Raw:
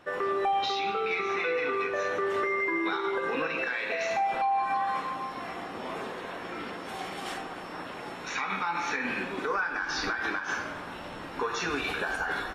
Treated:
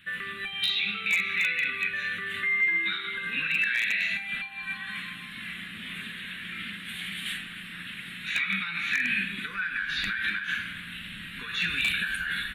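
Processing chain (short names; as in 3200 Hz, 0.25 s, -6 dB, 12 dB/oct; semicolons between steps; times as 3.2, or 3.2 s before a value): EQ curve 140 Hz 0 dB, 200 Hz +5 dB, 290 Hz -13 dB, 450 Hz -23 dB, 850 Hz -29 dB, 1700 Hz +5 dB, 2600 Hz +9 dB, 3800 Hz +9 dB, 5400 Hz -17 dB, 9300 Hz +8 dB; wavefolder -17.5 dBFS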